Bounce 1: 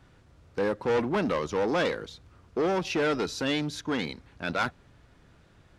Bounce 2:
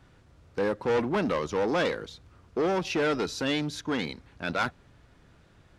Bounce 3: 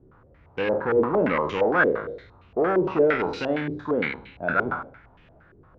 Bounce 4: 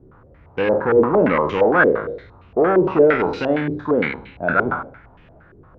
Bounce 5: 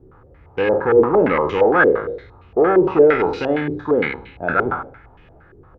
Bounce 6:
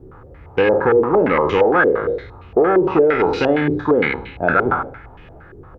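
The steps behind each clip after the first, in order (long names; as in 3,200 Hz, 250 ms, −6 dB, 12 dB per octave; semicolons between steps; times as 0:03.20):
no processing that can be heard
peak hold with a decay on every bin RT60 0.60 s; hum removal 67.11 Hz, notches 30; low-pass on a step sequencer 8.7 Hz 400–2,700 Hz
high-shelf EQ 3,100 Hz −8.5 dB; level +6.5 dB
comb filter 2.4 ms, depth 32%
downward compressor 5 to 1, threshold −18 dBFS, peak gain reduction 10 dB; level +6.5 dB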